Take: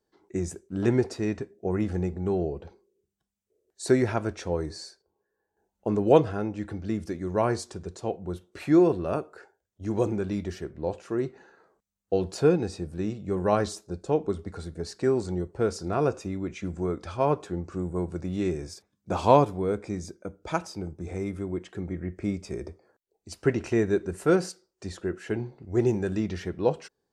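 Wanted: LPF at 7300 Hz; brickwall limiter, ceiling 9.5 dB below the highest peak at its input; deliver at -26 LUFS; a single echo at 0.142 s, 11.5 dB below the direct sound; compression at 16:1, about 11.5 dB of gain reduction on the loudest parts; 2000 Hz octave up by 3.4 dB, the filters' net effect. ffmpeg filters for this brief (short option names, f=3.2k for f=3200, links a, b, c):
-af "lowpass=7.3k,equalizer=f=2k:t=o:g=4.5,acompressor=threshold=-23dB:ratio=16,alimiter=limit=-22dB:level=0:latency=1,aecho=1:1:142:0.266,volume=8dB"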